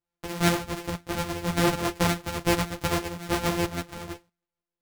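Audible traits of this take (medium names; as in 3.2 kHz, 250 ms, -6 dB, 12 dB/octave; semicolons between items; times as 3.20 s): a buzz of ramps at a fixed pitch in blocks of 256 samples; tremolo saw up 6.3 Hz, depth 40%; a shimmering, thickened sound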